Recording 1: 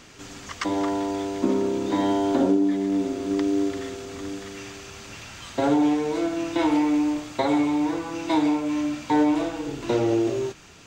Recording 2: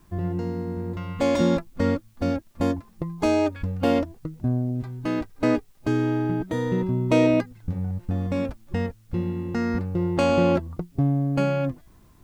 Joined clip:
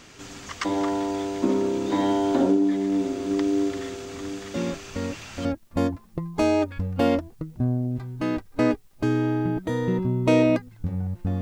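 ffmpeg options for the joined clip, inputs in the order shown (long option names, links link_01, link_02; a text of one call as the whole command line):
ffmpeg -i cue0.wav -i cue1.wav -filter_complex "[1:a]asplit=2[link_01][link_02];[0:a]apad=whole_dur=11.41,atrim=end=11.41,atrim=end=5.452[link_03];[link_02]atrim=start=2.288:end=8.25[link_04];[link_01]atrim=start=1.38:end=2.29,asetpts=PTS-STARTPTS,volume=-7.5dB,afade=type=in:duration=0.004:curve=hsin,afade=type=out:start_time=0.906:duration=0.004:curve=hsin,adelay=4540[link_05];[link_03][link_04]acrossfade=duration=0.004:curve1=hsin:curve2=hsin[link_06];[link_06][link_05]amix=inputs=2:normalize=0" out.wav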